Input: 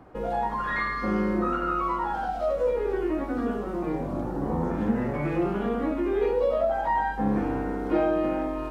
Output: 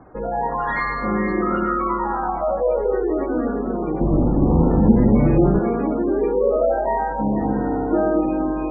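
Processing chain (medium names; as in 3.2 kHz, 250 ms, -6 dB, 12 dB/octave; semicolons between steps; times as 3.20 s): 6.79–7.47 s: dynamic bell 1.5 kHz, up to -5 dB, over -36 dBFS, Q 0.72; echo whose repeats swap between lows and highs 237 ms, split 960 Hz, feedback 54%, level -3 dB; spectral gate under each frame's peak -25 dB strong; 4.01–5.59 s: tilt EQ -3 dB/octave; trim +4 dB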